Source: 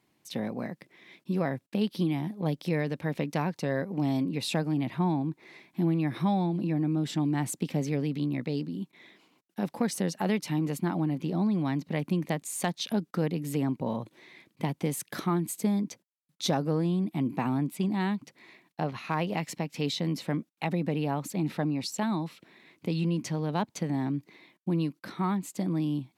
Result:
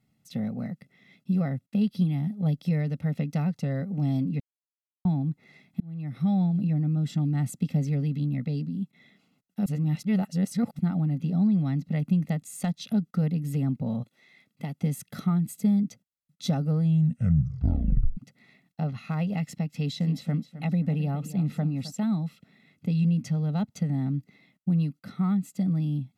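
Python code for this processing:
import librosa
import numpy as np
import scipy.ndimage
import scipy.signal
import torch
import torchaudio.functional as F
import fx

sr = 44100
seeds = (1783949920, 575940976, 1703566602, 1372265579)

y = fx.highpass(x, sr, hz=fx.line((14.02, 830.0), (14.78, 310.0)), slope=6, at=(14.02, 14.78), fade=0.02)
y = fx.echo_feedback(y, sr, ms=263, feedback_pct=32, wet_db=-14.0, at=(19.98, 21.9), fade=0.02)
y = fx.edit(y, sr, fx.silence(start_s=4.4, length_s=0.65),
    fx.fade_in_span(start_s=5.8, length_s=0.61),
    fx.reverse_span(start_s=9.66, length_s=1.13),
    fx.tape_stop(start_s=16.8, length_s=1.37), tone=tone)
y = fx.low_shelf_res(y, sr, hz=400.0, db=10.0, q=1.5)
y = y + 0.9 * np.pad(y, (int(1.5 * sr / 1000.0), 0))[:len(y)]
y = F.gain(torch.from_numpy(y), -8.0).numpy()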